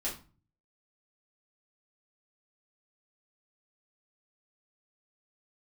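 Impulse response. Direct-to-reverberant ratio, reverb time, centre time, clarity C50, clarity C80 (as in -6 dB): -7.0 dB, 0.35 s, 25 ms, 9.0 dB, 14.5 dB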